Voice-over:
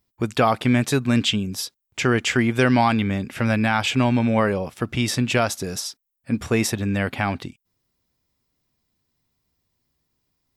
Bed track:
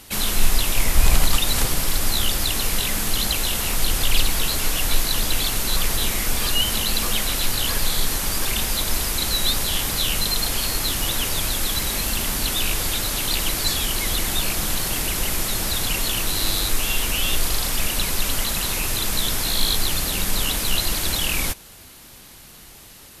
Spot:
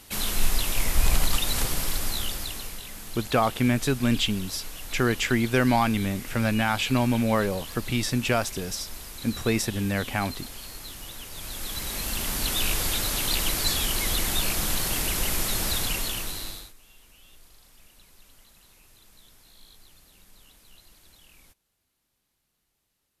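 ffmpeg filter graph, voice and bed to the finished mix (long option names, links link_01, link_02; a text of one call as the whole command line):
ffmpeg -i stem1.wav -i stem2.wav -filter_complex "[0:a]adelay=2950,volume=-4dB[link_01];[1:a]volume=8.5dB,afade=type=out:start_time=1.83:duration=0.97:silence=0.266073,afade=type=in:start_time=11.3:duration=1.35:silence=0.199526,afade=type=out:start_time=15.72:duration=1.01:silence=0.0334965[link_02];[link_01][link_02]amix=inputs=2:normalize=0" out.wav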